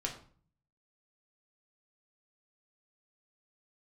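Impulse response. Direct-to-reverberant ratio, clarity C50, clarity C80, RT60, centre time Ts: 0.0 dB, 9.0 dB, 13.0 dB, 0.45 s, 18 ms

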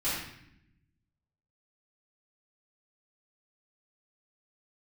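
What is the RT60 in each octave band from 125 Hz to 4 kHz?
1.6 s, 1.3 s, 0.80 s, 0.70 s, 0.80 s, 0.65 s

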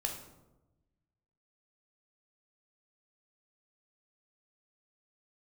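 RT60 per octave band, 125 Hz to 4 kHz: 1.6 s, 1.4 s, 1.1 s, 0.90 s, 0.65 s, 0.55 s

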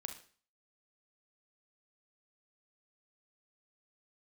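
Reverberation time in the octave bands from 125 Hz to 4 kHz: 0.45 s, 0.45 s, 0.45 s, 0.45 s, 0.45 s, 0.45 s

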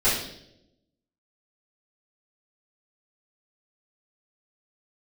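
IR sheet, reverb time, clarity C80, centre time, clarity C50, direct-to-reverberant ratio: 0.80 s, 6.5 dB, 48 ms, 3.0 dB, -14.0 dB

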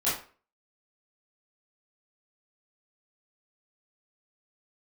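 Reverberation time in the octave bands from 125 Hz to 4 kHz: 0.35 s, 0.40 s, 0.40 s, 0.40 s, 0.35 s, 0.30 s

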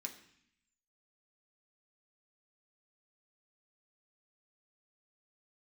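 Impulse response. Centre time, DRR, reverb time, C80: 14 ms, 2.0 dB, 0.65 s, 13.5 dB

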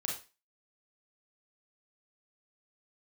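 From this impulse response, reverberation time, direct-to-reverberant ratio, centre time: 0.30 s, -2.0 dB, 32 ms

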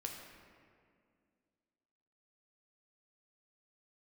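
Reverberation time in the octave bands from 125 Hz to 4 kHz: 2.3 s, 2.8 s, 2.4 s, 2.0 s, 1.8 s, 1.3 s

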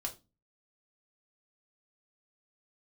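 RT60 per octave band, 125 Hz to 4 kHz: 0.50 s, 0.45 s, 0.25 s, 0.25 s, 0.20 s, 0.25 s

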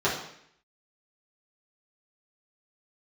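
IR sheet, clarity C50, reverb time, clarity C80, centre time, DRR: 5.0 dB, 0.70 s, 8.5 dB, 36 ms, -8.5 dB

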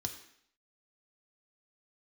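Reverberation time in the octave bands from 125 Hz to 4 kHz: 0.50 s, 0.70 s, 0.65 s, 0.65 s, 0.70 s, 0.65 s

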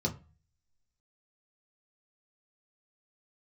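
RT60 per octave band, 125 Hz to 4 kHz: 0.60 s, 0.40 s, 0.30 s, 0.35 s, 0.30 s, 0.25 s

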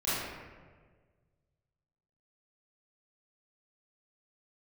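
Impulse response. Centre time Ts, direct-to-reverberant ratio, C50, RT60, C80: 115 ms, -13.0 dB, -4.0 dB, 1.6 s, 0.0 dB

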